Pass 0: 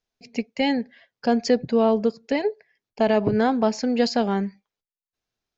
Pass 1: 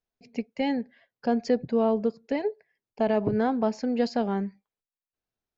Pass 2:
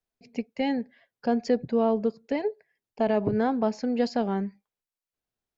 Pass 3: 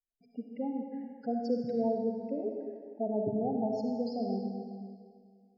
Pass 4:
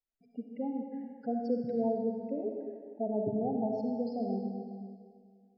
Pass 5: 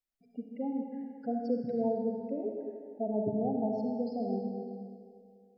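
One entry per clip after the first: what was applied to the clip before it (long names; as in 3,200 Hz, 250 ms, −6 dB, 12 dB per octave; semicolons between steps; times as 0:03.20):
high-shelf EQ 2,300 Hz −9 dB; level −4 dB
tape wow and flutter 19 cents
gate on every frequency bin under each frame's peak −10 dB strong; comb and all-pass reverb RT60 2 s, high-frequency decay 0.95×, pre-delay 20 ms, DRR 1.5 dB; level −8 dB
high-frequency loss of the air 210 metres
spring reverb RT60 2.1 s, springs 33 ms, chirp 25 ms, DRR 11 dB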